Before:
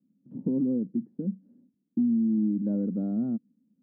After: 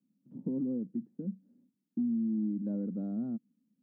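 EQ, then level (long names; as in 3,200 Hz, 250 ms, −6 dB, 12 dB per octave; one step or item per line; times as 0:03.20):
high-pass filter 120 Hz
parametric band 360 Hz −4 dB 2.5 octaves
−3.0 dB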